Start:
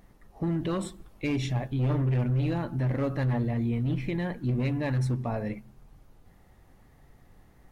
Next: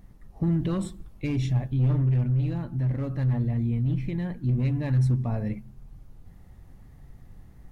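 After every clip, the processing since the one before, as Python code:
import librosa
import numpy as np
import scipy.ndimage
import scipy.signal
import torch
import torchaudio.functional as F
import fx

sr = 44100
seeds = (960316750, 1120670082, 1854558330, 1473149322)

y = fx.bass_treble(x, sr, bass_db=11, treble_db=2)
y = fx.rider(y, sr, range_db=10, speed_s=2.0)
y = y * librosa.db_to_amplitude(-6.5)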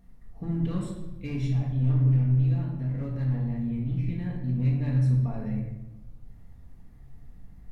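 y = fx.room_shoebox(x, sr, seeds[0], volume_m3=460.0, walls='mixed', distance_m=1.7)
y = y * librosa.db_to_amplitude(-8.5)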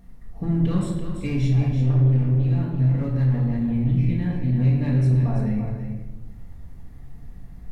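y = 10.0 ** (-17.5 / 20.0) * np.tanh(x / 10.0 ** (-17.5 / 20.0))
y = y + 10.0 ** (-8.0 / 20.0) * np.pad(y, (int(335 * sr / 1000.0), 0))[:len(y)]
y = y * librosa.db_to_amplitude(7.5)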